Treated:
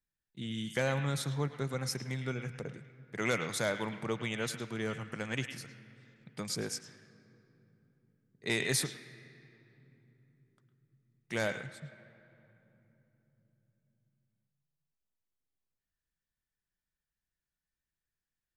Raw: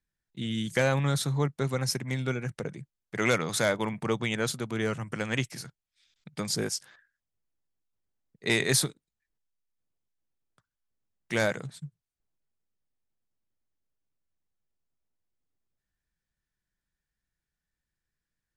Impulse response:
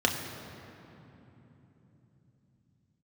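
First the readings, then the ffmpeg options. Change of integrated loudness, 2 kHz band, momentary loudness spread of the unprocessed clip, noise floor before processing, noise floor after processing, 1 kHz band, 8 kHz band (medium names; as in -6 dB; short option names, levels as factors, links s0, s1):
-6.5 dB, -5.5 dB, 14 LU, under -85 dBFS, under -85 dBFS, -6.0 dB, -6.5 dB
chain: -filter_complex "[0:a]asplit=2[s0][s1];[s1]equalizer=f=2300:t=o:w=2.6:g=14.5[s2];[1:a]atrim=start_sample=2205,adelay=106[s3];[s2][s3]afir=irnorm=-1:irlink=0,volume=0.0266[s4];[s0][s4]amix=inputs=2:normalize=0,volume=0.473"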